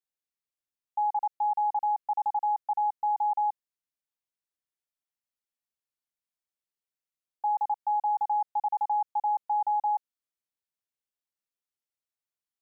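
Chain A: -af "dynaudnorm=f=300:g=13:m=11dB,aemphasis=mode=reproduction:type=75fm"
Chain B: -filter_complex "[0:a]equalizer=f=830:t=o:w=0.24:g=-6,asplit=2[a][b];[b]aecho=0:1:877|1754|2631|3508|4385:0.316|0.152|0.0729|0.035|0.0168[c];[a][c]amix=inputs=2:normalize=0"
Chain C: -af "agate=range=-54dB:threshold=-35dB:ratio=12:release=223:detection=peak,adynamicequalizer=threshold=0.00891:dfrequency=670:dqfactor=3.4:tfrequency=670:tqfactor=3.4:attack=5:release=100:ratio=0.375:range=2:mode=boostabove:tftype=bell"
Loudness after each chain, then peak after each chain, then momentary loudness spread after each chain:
-18.5, -34.5, -27.5 LUFS; -11.5, -23.5, -21.0 dBFS; 10, 17, 4 LU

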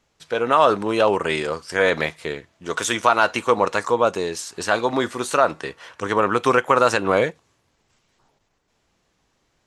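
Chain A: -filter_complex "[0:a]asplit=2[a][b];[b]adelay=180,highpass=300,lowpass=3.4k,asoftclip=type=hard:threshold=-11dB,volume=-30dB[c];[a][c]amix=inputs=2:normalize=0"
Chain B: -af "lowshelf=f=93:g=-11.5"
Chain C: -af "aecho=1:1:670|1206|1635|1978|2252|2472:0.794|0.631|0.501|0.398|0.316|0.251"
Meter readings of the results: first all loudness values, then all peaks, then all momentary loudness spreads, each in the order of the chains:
-20.5, -20.5, -17.5 LUFS; -1.5, -2.0, -1.0 dBFS; 11, 11, 5 LU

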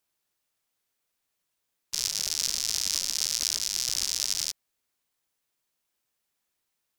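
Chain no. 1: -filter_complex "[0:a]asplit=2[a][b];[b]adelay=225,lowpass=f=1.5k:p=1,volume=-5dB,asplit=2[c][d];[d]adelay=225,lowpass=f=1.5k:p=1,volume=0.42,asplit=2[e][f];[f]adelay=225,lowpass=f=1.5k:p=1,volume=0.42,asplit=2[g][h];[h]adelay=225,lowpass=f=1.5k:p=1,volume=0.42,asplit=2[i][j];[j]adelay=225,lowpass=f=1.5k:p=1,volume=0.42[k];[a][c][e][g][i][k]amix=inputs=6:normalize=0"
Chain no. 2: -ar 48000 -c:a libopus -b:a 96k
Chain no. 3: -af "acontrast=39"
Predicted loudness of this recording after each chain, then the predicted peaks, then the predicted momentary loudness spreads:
-26.5, -27.0, -22.0 LUFS; -6.5, -6.5, -3.5 dBFS; 4, 4, 4 LU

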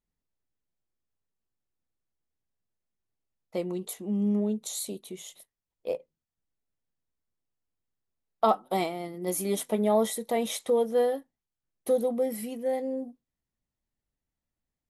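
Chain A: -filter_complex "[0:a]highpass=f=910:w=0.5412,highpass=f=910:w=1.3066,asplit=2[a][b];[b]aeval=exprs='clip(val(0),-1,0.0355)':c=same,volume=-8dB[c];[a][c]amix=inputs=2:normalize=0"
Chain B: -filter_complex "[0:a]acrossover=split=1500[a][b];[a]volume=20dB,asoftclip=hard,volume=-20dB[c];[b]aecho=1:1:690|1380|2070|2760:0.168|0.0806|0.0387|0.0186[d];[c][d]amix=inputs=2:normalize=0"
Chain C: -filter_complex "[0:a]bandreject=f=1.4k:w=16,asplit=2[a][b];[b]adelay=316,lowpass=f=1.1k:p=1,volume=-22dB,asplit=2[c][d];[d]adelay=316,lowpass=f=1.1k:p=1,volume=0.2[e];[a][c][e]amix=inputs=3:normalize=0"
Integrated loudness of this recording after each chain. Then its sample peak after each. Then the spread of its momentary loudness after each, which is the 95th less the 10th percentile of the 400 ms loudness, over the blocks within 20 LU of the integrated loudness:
-34.5, -30.0, -29.0 LUFS; -14.0, -16.5, -11.0 dBFS; 18, 13, 12 LU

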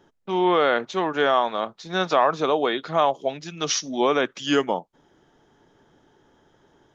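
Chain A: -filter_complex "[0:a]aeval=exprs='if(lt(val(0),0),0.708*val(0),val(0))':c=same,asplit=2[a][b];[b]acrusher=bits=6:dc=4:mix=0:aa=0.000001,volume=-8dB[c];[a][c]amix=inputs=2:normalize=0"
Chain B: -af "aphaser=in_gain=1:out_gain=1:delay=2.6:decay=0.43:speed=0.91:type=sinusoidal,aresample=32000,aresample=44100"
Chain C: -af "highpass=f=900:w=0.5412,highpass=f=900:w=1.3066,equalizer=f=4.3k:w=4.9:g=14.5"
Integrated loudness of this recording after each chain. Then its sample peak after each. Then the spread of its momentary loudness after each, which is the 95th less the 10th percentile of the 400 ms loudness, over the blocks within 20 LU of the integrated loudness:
-21.5, -21.5, -26.0 LUFS; -3.5, -3.0, -8.5 dBFS; 9, 11, 12 LU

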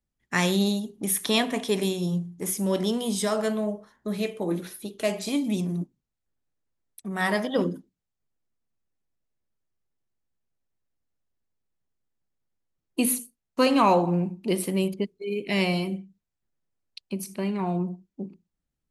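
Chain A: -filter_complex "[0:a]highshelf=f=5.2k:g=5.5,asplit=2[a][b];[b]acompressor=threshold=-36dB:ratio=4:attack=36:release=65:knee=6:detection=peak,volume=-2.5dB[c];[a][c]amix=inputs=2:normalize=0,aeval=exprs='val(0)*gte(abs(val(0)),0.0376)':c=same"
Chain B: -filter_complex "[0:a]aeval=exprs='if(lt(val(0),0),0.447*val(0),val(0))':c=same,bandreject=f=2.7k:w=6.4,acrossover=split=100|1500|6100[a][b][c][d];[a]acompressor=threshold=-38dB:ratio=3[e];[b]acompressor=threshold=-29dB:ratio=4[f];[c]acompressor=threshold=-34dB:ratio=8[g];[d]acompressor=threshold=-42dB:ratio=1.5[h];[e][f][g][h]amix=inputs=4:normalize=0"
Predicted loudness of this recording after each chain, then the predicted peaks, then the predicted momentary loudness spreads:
-24.0, -33.5 LUFS; -4.5, -13.5 dBFS; 13, 10 LU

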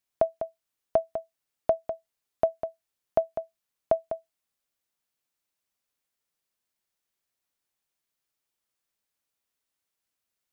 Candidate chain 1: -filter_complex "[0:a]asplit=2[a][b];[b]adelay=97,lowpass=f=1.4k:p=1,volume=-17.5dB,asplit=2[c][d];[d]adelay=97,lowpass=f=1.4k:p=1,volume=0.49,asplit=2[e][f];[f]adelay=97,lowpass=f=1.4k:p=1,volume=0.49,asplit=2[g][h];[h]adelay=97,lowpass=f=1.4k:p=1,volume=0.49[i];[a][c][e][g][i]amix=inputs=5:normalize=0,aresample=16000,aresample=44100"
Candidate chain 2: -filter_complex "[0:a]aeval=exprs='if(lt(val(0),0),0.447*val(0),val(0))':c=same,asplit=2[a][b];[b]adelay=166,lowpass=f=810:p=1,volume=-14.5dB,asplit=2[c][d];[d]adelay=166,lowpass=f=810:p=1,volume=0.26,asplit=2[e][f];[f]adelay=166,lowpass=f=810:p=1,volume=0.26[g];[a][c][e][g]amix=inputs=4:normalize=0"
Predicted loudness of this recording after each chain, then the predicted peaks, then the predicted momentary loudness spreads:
-31.5, -34.0 LUFS; -11.0, -11.0 dBFS; 9, 9 LU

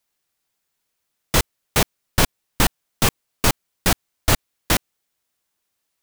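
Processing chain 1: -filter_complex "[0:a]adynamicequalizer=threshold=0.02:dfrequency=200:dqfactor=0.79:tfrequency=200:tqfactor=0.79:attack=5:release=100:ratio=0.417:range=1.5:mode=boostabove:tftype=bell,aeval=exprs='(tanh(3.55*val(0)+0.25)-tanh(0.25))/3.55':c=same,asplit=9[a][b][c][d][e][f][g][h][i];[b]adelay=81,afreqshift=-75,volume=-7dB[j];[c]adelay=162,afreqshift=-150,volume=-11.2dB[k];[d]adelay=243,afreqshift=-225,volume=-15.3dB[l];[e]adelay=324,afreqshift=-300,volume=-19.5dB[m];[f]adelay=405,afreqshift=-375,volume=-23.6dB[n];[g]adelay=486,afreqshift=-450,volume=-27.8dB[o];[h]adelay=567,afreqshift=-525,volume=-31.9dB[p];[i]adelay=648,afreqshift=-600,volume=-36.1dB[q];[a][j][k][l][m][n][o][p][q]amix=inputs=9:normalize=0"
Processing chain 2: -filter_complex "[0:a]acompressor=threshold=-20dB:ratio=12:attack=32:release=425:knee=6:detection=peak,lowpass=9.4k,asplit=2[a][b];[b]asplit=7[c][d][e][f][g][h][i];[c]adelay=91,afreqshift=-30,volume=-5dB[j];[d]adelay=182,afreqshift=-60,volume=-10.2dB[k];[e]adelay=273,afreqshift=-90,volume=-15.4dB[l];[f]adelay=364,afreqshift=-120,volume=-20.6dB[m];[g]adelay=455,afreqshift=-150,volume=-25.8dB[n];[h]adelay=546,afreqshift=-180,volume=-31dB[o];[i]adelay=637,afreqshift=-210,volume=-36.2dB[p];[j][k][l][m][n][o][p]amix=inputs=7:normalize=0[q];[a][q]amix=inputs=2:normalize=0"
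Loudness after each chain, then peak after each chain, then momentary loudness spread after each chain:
-23.5, -26.5 LUFS; -9.0, -5.0 dBFS; 1, 2 LU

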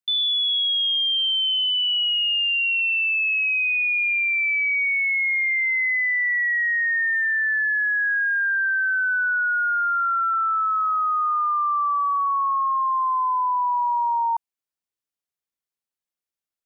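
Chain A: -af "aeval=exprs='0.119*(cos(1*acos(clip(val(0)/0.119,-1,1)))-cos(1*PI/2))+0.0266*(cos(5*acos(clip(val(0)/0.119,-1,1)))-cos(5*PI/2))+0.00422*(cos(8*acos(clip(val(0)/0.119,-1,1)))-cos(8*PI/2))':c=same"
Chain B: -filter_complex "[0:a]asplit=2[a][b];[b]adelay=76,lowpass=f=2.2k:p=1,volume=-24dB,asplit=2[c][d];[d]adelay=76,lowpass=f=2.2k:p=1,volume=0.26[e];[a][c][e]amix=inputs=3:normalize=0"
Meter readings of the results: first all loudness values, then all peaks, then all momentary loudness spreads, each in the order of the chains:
-20.5, -20.0 LUFS; -18.0, -18.5 dBFS; 3, 3 LU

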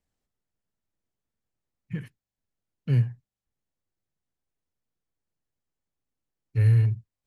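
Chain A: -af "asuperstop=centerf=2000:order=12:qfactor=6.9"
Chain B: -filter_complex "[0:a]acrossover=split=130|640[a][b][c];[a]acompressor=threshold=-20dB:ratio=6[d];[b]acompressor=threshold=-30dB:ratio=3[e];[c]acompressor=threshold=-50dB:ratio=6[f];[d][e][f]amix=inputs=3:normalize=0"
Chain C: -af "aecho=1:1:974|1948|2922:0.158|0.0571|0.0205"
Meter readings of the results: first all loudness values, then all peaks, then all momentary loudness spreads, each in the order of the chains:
-24.0, -26.0, -25.5 LUFS; -12.5, -15.5, -12.5 dBFS; 17, 16, 20 LU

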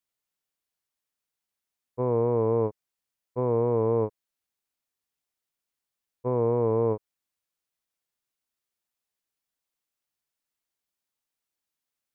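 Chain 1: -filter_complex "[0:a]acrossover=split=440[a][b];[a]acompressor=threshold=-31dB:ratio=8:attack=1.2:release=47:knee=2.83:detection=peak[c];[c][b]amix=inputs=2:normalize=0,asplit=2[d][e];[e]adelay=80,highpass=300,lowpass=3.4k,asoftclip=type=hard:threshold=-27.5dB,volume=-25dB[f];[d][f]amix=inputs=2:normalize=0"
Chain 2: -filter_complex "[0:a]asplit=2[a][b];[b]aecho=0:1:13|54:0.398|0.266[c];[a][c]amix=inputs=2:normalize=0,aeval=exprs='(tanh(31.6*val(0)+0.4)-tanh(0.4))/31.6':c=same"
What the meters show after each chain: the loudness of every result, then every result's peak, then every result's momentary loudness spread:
-29.5, -34.0 LUFS; -19.0, -27.0 dBFS; 10, 10 LU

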